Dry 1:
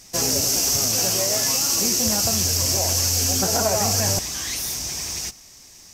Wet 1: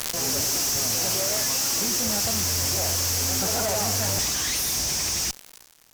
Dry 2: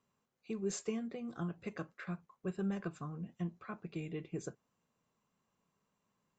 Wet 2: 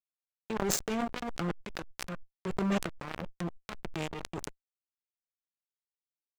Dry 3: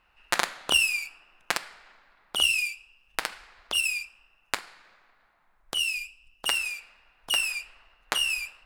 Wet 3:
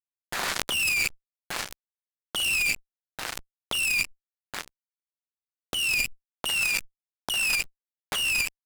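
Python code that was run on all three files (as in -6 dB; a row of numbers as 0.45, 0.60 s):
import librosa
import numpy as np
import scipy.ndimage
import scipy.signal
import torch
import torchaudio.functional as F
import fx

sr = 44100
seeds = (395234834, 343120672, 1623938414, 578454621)

y = fx.fuzz(x, sr, gain_db=35.0, gate_db=-39.0)
y = fx.transient(y, sr, attack_db=-9, sustain_db=12)
y = fx.pre_swell(y, sr, db_per_s=22.0)
y = y * 10.0 ** (-10.0 / 20.0)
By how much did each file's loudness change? -3.0, +6.0, +1.0 LU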